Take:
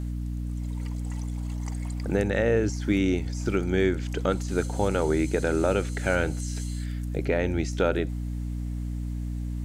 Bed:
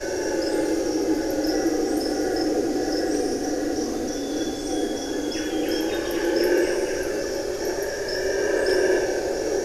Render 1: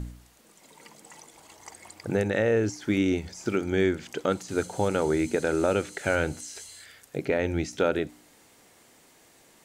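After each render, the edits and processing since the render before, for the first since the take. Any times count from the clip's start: de-hum 60 Hz, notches 5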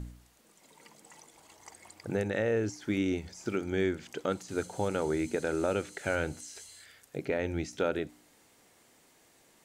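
trim -5.5 dB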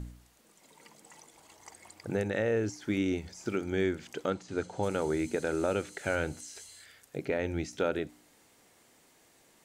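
4.30–4.83 s: distance through air 89 m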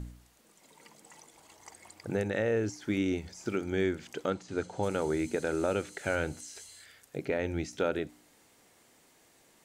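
no audible change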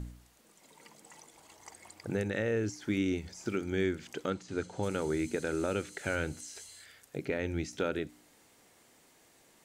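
dynamic bell 720 Hz, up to -6 dB, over -45 dBFS, Q 1.2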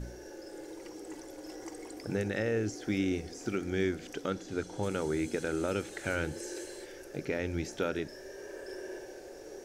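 add bed -22 dB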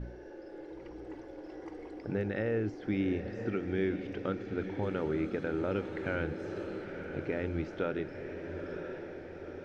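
distance through air 340 m; echo that smears into a reverb 956 ms, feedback 57%, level -8.5 dB

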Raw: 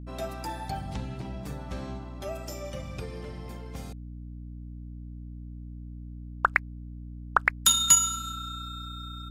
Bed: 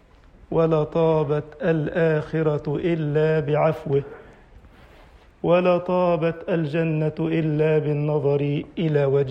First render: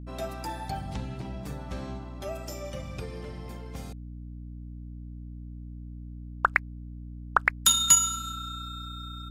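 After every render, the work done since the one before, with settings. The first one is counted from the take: no audible change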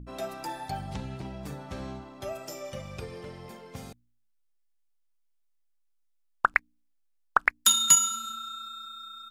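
de-hum 60 Hz, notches 5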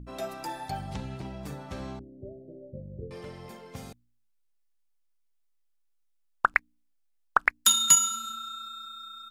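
1.99–3.11 s: steep low-pass 510 Hz 48 dB/octave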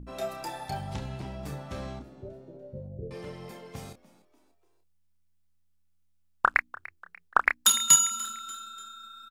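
doubling 29 ms -7 dB; frequency-shifting echo 293 ms, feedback 45%, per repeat +83 Hz, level -19.5 dB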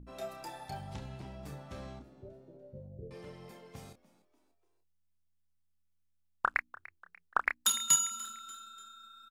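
trim -7.5 dB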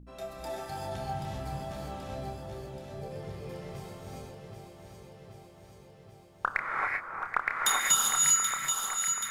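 on a send: echo whose repeats swap between lows and highs 390 ms, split 1.4 kHz, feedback 81%, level -4.5 dB; on the sum: gated-style reverb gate 420 ms rising, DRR -3 dB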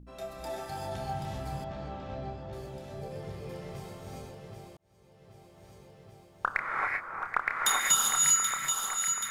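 1.64–2.53 s: distance through air 170 m; 4.77–5.73 s: fade in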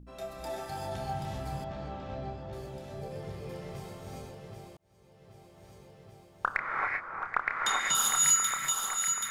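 6.56–7.95 s: distance through air 75 m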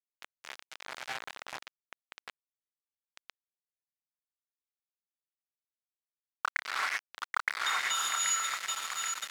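bit crusher 5-bit; band-pass filter 2.2 kHz, Q 0.68

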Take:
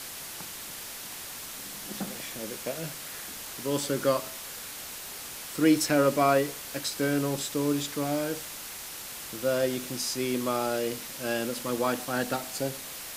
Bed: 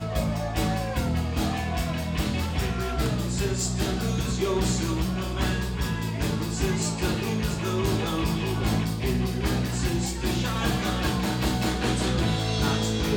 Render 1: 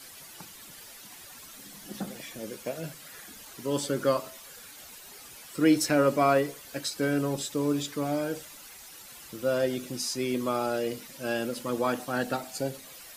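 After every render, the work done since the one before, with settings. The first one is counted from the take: noise reduction 11 dB, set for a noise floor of -41 dBFS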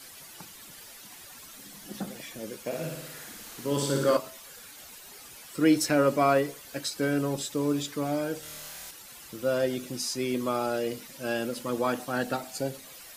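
2.65–4.17 s: flutter echo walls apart 9.8 m, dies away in 0.99 s; 8.40–8.91 s: flutter echo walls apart 4.5 m, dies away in 1 s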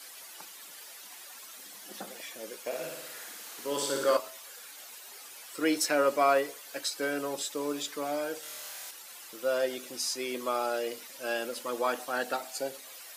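high-pass 460 Hz 12 dB/octave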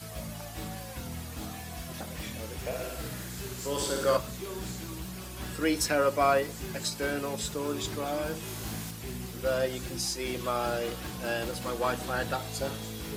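add bed -13.5 dB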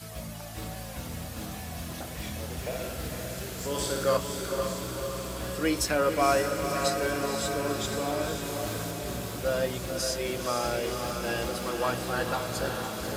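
echo that smears into a reverb 510 ms, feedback 66%, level -5 dB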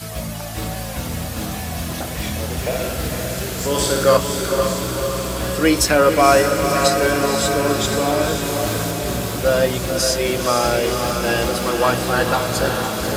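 trim +11.5 dB; peak limiter -2 dBFS, peak gain reduction 2 dB

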